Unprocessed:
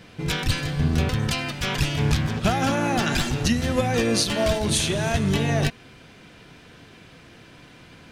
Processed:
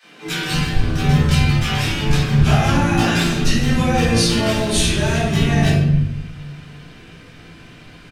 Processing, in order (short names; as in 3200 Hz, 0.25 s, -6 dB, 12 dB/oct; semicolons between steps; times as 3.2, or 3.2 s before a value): vibrato 2 Hz 11 cents; three bands offset in time highs, mids, lows 30/260 ms, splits 210/710 Hz; shoebox room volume 280 m³, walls mixed, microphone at 3.7 m; gain -5 dB